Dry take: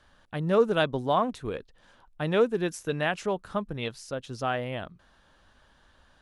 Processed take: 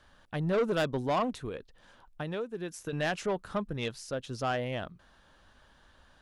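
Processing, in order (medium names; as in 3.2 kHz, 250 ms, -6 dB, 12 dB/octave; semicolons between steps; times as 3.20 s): 1.35–2.93 s: compression 4:1, threshold -34 dBFS, peak gain reduction 14 dB; saturation -23 dBFS, distortion -10 dB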